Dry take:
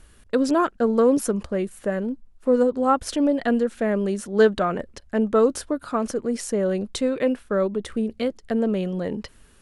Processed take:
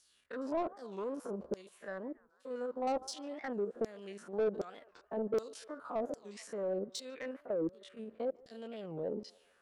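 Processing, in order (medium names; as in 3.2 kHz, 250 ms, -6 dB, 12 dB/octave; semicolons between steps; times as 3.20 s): spectrogram pixelated in time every 50 ms; LFO band-pass saw down 1.3 Hz 370–5600 Hz; 7.41–7.97 s: level held to a coarse grid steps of 10 dB; on a send: band-passed feedback delay 146 ms, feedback 73%, band-pass 1.3 kHz, level -23.5 dB; on the sum: saturation -26 dBFS, distortion -9 dB; in parallel at 0 dB: compression, threshold -45 dBFS, peak gain reduction 15.5 dB; on the sum: peaking EQ 2.1 kHz -10 dB 2.2 oct; warped record 45 rpm, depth 250 cents; trim -1 dB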